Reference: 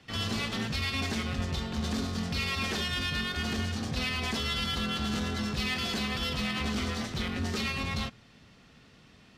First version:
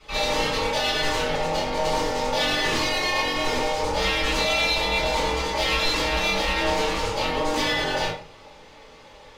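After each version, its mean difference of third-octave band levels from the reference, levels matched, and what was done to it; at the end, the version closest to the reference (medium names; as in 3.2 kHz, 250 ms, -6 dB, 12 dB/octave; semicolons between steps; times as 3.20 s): 5.5 dB: high-pass 49 Hz; in parallel at -7 dB: saturation -31.5 dBFS, distortion -12 dB; on the sum: ring modulator 700 Hz; simulated room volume 35 m³, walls mixed, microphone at 2.7 m; trim -4 dB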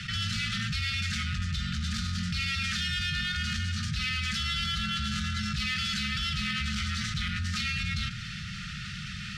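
12.5 dB: low-pass 8.7 kHz 12 dB/octave; in parallel at -6 dB: saturation -32 dBFS, distortion -11 dB; on the sum: brick-wall FIR band-stop 210–1200 Hz; level flattener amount 70%; trim -2.5 dB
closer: first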